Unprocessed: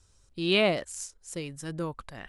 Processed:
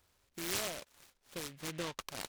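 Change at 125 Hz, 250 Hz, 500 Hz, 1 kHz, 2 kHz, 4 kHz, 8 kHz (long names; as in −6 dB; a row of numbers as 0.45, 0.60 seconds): −13.0, −14.0, −15.5, −8.5, −11.0, −10.0, −2.0 decibels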